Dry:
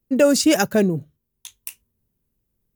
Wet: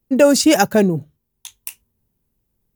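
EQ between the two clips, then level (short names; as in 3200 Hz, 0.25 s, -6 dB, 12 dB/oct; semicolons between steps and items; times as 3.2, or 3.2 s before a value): bell 840 Hz +5.5 dB 0.37 oct; +3.0 dB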